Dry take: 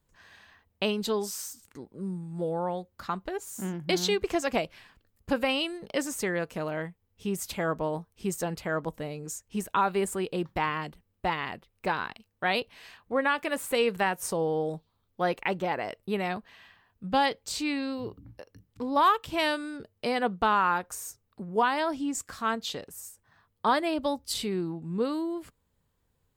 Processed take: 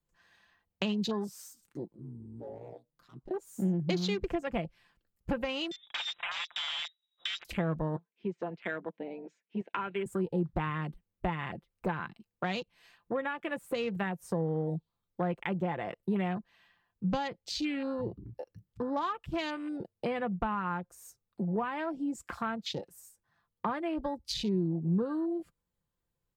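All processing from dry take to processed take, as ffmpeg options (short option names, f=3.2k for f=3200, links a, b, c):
-filter_complex "[0:a]asettb=1/sr,asplit=3[a][b][c];[a]atrim=end=1.914[d];[b]atrim=start=1.91:end=3.31,asetpts=PTS-STARTPTS,afade=t=in:d=0.004:c=qsin,afade=t=out:st=1.396:d=0.004:c=qsin,asoftclip=type=hard:threshold=-29dB,acompressor=threshold=-49dB:ratio=2.5:attack=3.2:release=140:knee=1:detection=peak,aeval=exprs='val(0)*sin(2*PI*58*n/s)':c=same[e];[c]atrim=start=3.306[f];[d][e]acrossfade=d=0.004:c1=hsin:c2=qsin[g];[g][f]acrossfade=d=0.004:c1=qsin:c2=hsin,asettb=1/sr,asplit=3[h][i][j];[h]atrim=end=5.714[k];[i]atrim=start=5.71:end=7.45,asetpts=PTS-STARTPTS,afade=t=in:d=0.004:c=qsin,afade=t=out:st=1.736:d=0.004:c=qsin,aeval=exprs='(mod(25.1*val(0)+1,2)-1)/25.1':c=same,lowpass=f=3.3k:t=q:w=0.5098,lowpass=f=3.3k:t=q:w=0.6013,lowpass=f=3.3k:t=q:w=0.9,lowpass=f=3.3k:t=q:w=2.563,afreqshift=-3900[l];[j]atrim=start=7.446[m];[k][l]acrossfade=d=0.004:c1=hsin:c2=qsin[n];[n][m]acrossfade=d=0.004:c1=qsin:c2=hsin,asettb=1/sr,asplit=3[o][p][q];[o]atrim=end=7.964[r];[p]atrim=start=7.96:end=10.06,asetpts=PTS-STARTPTS,afade=t=in:d=0.004:c=qsin,afade=t=out:st=2.096:d=0.004:c=qsin,deesser=0.3,highpass=f=260:w=0.5412,highpass=f=260:w=1.3066,equalizer=f=330:t=q:w=4:g=-6,equalizer=f=540:t=q:w=4:g=-8,equalizer=f=810:t=q:w=4:g=-7,equalizer=f=1.2k:t=q:w=4:g=-10,equalizer=f=2.3k:t=q:w=4:g=4,lowpass=f=3.3k:w=0.5412,lowpass=f=3.3k:w=1.3066[s];[q]atrim=start=10.056[t];[r][s]acrossfade=d=0.004:c1=hsin:c2=qsin[u];[u][t]acrossfade=d=0.004:c1=qsin:c2=hsin,afwtdn=0.0126,aecho=1:1:5.8:0.4,acrossover=split=180[v][w];[w]acompressor=threshold=-38dB:ratio=5[x];[v][x]amix=inputs=2:normalize=0,volume=5dB"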